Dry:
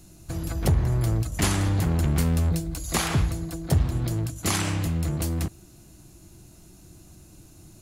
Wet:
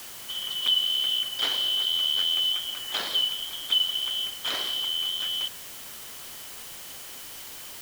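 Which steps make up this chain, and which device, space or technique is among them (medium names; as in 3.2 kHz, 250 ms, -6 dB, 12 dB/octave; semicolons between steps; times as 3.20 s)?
split-band scrambled radio (four frequency bands reordered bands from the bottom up 3412; band-pass 360–2900 Hz; white noise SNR 12 dB)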